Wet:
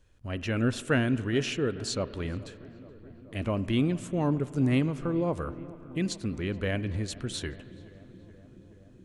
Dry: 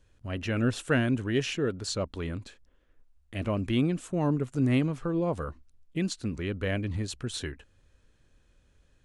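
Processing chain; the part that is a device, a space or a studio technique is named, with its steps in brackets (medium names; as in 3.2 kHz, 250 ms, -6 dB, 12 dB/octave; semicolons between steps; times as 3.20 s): dub delay into a spring reverb (filtered feedback delay 426 ms, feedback 80%, low-pass 1.8 kHz, level -20 dB; spring tank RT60 2.8 s, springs 35/45 ms, chirp 65 ms, DRR 16 dB)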